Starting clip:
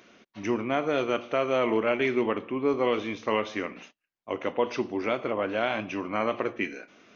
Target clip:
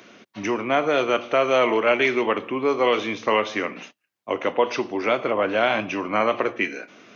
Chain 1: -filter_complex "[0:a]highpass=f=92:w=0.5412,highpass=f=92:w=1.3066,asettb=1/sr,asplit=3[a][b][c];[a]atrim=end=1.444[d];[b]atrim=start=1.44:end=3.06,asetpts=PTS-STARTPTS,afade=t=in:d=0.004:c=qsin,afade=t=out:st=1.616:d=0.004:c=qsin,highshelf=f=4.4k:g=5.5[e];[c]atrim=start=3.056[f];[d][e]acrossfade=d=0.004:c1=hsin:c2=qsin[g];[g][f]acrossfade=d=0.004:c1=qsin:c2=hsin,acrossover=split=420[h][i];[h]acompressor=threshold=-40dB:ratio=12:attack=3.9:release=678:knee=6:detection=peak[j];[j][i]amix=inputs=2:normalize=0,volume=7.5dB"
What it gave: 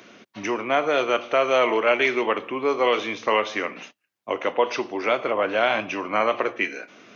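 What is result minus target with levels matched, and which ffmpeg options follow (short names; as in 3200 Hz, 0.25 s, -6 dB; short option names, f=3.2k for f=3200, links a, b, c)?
compressor: peak gain reduction +6.5 dB
-filter_complex "[0:a]highpass=f=92:w=0.5412,highpass=f=92:w=1.3066,asettb=1/sr,asplit=3[a][b][c];[a]atrim=end=1.444[d];[b]atrim=start=1.44:end=3.06,asetpts=PTS-STARTPTS,afade=t=in:d=0.004:c=qsin,afade=t=out:st=1.616:d=0.004:c=qsin,highshelf=f=4.4k:g=5.5[e];[c]atrim=start=3.056[f];[d][e]acrossfade=d=0.004:c1=hsin:c2=qsin[g];[g][f]acrossfade=d=0.004:c1=qsin:c2=hsin,acrossover=split=420[h][i];[h]acompressor=threshold=-33dB:ratio=12:attack=3.9:release=678:knee=6:detection=peak[j];[j][i]amix=inputs=2:normalize=0,volume=7.5dB"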